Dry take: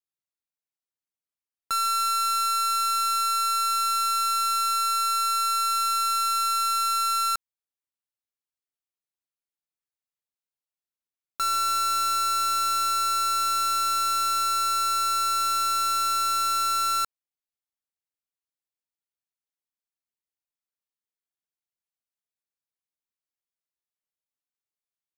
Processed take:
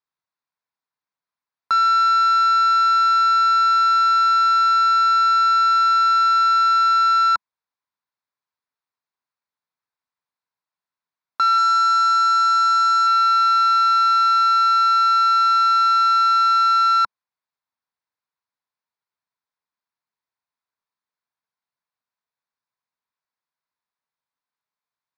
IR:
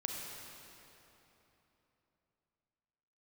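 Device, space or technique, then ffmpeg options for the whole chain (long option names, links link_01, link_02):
guitar cabinet: -filter_complex "[0:a]asettb=1/sr,asplit=3[link_01][link_02][link_03];[link_01]atrim=end=11.584[link_04];[link_02]atrim=start=11.58:end=13.07,asetpts=PTS-STARTPTS,afade=type=in:duration=0.004:curve=qsin,afade=type=out:start_time=1.486:duration=0.004:curve=qsin,equalizer=frequency=250:width_type=o:width=0.67:gain=-6,equalizer=frequency=630:width_type=o:width=0.67:gain=5,equalizer=frequency=2500:width_type=o:width=0.67:gain=-7,equalizer=frequency=6300:width_type=o:width=0.67:gain=7,equalizer=frequency=16000:width_type=o:width=0.67:gain=-7[link_05];[link_03]atrim=start=13.066[link_06];[link_04][link_05]acrossfade=duration=0.004:curve1=hsin:curve2=qsin[link_07];[link_07][link_06]acrossfade=duration=0.004:curve1=qsin:curve2=hsin,highpass=110,equalizer=frequency=210:width_type=q:width=4:gain=-3,equalizer=frequency=340:width_type=q:width=4:gain=-9,equalizer=frequency=530:width_type=q:width=4:gain=-3,equalizer=frequency=1000:width_type=q:width=4:gain=9,equalizer=frequency=1500:width_type=q:width=4:gain=3,equalizer=frequency=3000:width_type=q:width=4:gain=-10,lowpass=frequency=4600:width=0.5412,lowpass=frequency=4600:width=1.3066,volume=6.5dB"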